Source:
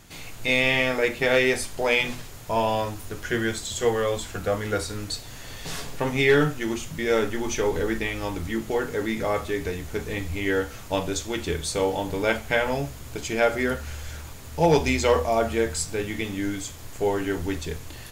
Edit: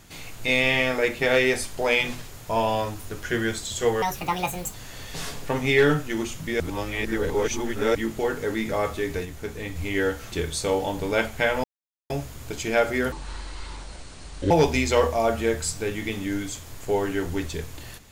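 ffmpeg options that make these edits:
ffmpeg -i in.wav -filter_complex "[0:a]asplit=11[link_01][link_02][link_03][link_04][link_05][link_06][link_07][link_08][link_09][link_10][link_11];[link_01]atrim=end=4.024[link_12];[link_02]atrim=start=4.02:end=5.25,asetpts=PTS-STARTPTS,asetrate=75411,aresample=44100,atrim=end_sample=31721,asetpts=PTS-STARTPTS[link_13];[link_03]atrim=start=5.246:end=7.112[link_14];[link_04]atrim=start=7.108:end=8.462,asetpts=PTS-STARTPTS,areverse[link_15];[link_05]atrim=start=8.458:end=9.762[link_16];[link_06]atrim=start=9.758:end=10.272,asetpts=PTS-STARTPTS,volume=-3.5dB[link_17];[link_07]atrim=start=10.268:end=10.832[link_18];[link_08]atrim=start=11.428:end=12.75,asetpts=PTS-STARTPTS,afade=type=out:start_time=1.318:duration=0.004:curve=hsin,apad=pad_dur=0.46[link_19];[link_09]atrim=start=12.75:end=13.774,asetpts=PTS-STARTPTS,afade=type=in:duration=0.004:curve=hsin[link_20];[link_10]atrim=start=13.77:end=14.63,asetpts=PTS-STARTPTS,asetrate=27342,aresample=44100[link_21];[link_11]atrim=start=14.626[link_22];[link_12][link_13]acrossfade=duration=0.004:curve1=hsin:curve2=hsin[link_23];[link_23][link_14]acrossfade=duration=0.004:curve1=hsin:curve2=hsin[link_24];[link_24][link_15]acrossfade=duration=0.004:curve1=hsin:curve2=hsin[link_25];[link_25][link_16]acrossfade=duration=0.004:curve1=hsin:curve2=hsin[link_26];[link_26][link_17]acrossfade=duration=0.004:curve1=hsin:curve2=hsin[link_27];[link_27][link_18]acrossfade=duration=0.004:curve1=hsin:curve2=hsin[link_28];[link_19][link_20]concat=n=2:v=0:a=1[link_29];[link_28][link_29]acrossfade=duration=0.004:curve1=hsin:curve2=hsin[link_30];[link_30][link_21]acrossfade=duration=0.004:curve1=hsin:curve2=hsin[link_31];[link_31][link_22]acrossfade=duration=0.004:curve1=hsin:curve2=hsin" out.wav

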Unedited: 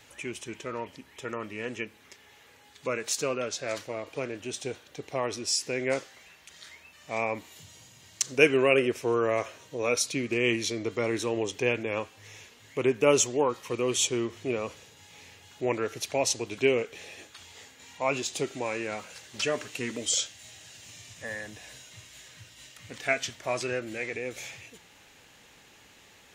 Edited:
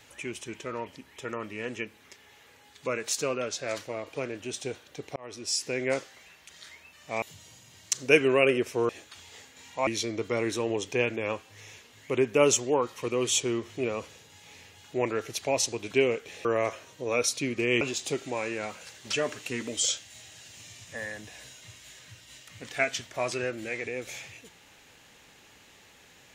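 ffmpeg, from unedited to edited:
ffmpeg -i in.wav -filter_complex "[0:a]asplit=7[link_01][link_02][link_03][link_04][link_05][link_06][link_07];[link_01]atrim=end=5.16,asetpts=PTS-STARTPTS,afade=type=out:start_time=5.156:duration=0.004:curve=hsin[link_08];[link_02]atrim=start=5.16:end=7.222,asetpts=PTS-STARTPTS,afade=type=in:duration=0.6:curve=qsin[link_09];[link_03]atrim=start=7.508:end=9.182[link_10];[link_04]atrim=start=17.118:end=18.102[link_11];[link_05]atrim=start=10.538:end=17.122[link_12];[link_06]atrim=start=9.178:end=10.542[link_13];[link_07]atrim=start=18.098[link_14];[link_08][link_09]concat=n=2:v=0:a=1[link_15];[link_15][link_10]acrossfade=duration=0.004:curve1=hsin:curve2=hsin[link_16];[link_16][link_11]acrossfade=duration=0.004:curve1=hsin:curve2=hsin[link_17];[link_17][link_12]acrossfade=duration=0.004:curve1=hsin:curve2=hsin[link_18];[link_18][link_13]acrossfade=duration=0.004:curve1=hsin:curve2=hsin[link_19];[link_19][link_14]acrossfade=duration=0.004:curve1=hsin:curve2=hsin" out.wav

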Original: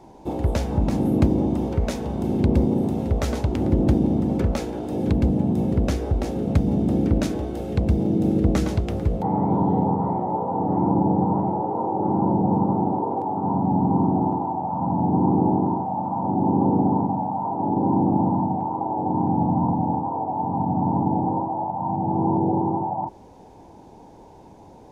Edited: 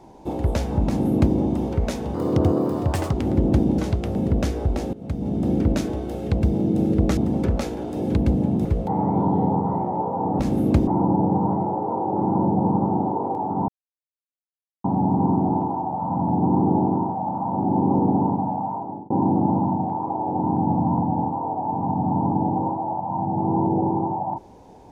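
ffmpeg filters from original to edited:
ffmpeg -i in.wav -filter_complex "[0:a]asplit=12[link_01][link_02][link_03][link_04][link_05][link_06][link_07][link_08][link_09][link_10][link_11][link_12];[link_01]atrim=end=2.144[link_13];[link_02]atrim=start=2.14:end=3.48,asetpts=PTS-STARTPTS,asetrate=59535,aresample=44100,atrim=end_sample=43773,asetpts=PTS-STARTPTS[link_14];[link_03]atrim=start=3.476:end=4.132[link_15];[link_04]atrim=start=8.628:end=9.002[link_16];[link_05]atrim=start=5.608:end=6.39,asetpts=PTS-STARTPTS,afade=type=out:start_time=0.778:duration=0.004:curve=hsin:silence=0.112202[link_17];[link_06]atrim=start=6.39:end=8.632,asetpts=PTS-STARTPTS,afade=type=in:duration=0.6:silence=0.112202[link_18];[link_07]atrim=start=4.128:end=5.612[link_19];[link_08]atrim=start=8.998:end=10.742[link_20];[link_09]atrim=start=0.868:end=1.352[link_21];[link_10]atrim=start=10.738:end=13.55,asetpts=PTS-STARTPTS,afade=type=out:start_time=2.808:duration=0.004:curve=hsin,apad=pad_dur=1.16[link_22];[link_11]atrim=start=13.55:end=17.81,asetpts=PTS-STARTPTS,afade=type=in:duration=0.004:curve=hsin,afade=type=out:start_time=3.8:duration=0.46[link_23];[link_12]atrim=start=17.81,asetpts=PTS-STARTPTS,afade=type=in:duration=0.004:curve=hsin[link_24];[link_13][link_14]acrossfade=duration=0.004:curve1=hsin:curve2=hsin[link_25];[link_25][link_15]acrossfade=duration=0.004:curve1=hsin:curve2=hsin[link_26];[link_26][link_16]acrossfade=duration=0.004:curve1=hsin:curve2=hsin[link_27];[link_17][link_18]concat=n=2:v=0:a=1[link_28];[link_27][link_28]acrossfade=duration=0.004:curve1=hsin:curve2=hsin[link_29];[link_29][link_19]acrossfade=duration=0.004:curve1=hsin:curve2=hsin[link_30];[link_30][link_20]acrossfade=duration=0.004:curve1=hsin:curve2=hsin[link_31];[link_31][link_21]acrossfade=duration=0.004:curve1=hsin:curve2=hsin[link_32];[link_22][link_23][link_24]concat=n=3:v=0:a=1[link_33];[link_32][link_33]acrossfade=duration=0.004:curve1=hsin:curve2=hsin" out.wav

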